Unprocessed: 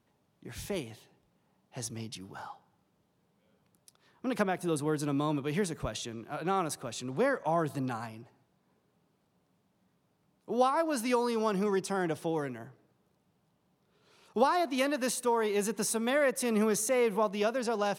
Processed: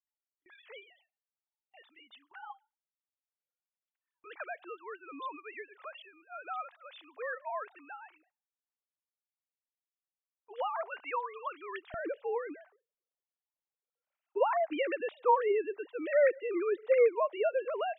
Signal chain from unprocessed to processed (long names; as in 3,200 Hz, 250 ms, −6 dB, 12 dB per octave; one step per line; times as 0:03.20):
three sine waves on the formant tracks
high-pass filter 1,000 Hz 12 dB per octave, from 0:11.94 160 Hz
noise gate with hold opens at −56 dBFS
level −1 dB